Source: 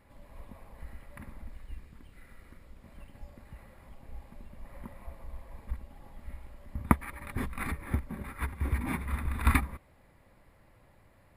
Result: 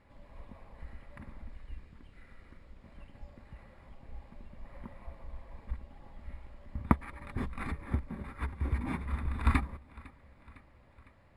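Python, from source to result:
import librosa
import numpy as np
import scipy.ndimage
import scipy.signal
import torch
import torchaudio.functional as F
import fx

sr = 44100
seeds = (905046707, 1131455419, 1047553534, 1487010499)

p1 = scipy.signal.sosfilt(scipy.signal.butter(2, 5800.0, 'lowpass', fs=sr, output='sos'), x)
p2 = p1 + fx.echo_feedback(p1, sr, ms=505, feedback_pct=56, wet_db=-23.0, dry=0)
p3 = fx.dynamic_eq(p2, sr, hz=2200.0, q=0.88, threshold_db=-53.0, ratio=4.0, max_db=-4)
y = p3 * librosa.db_to_amplitude(-1.5)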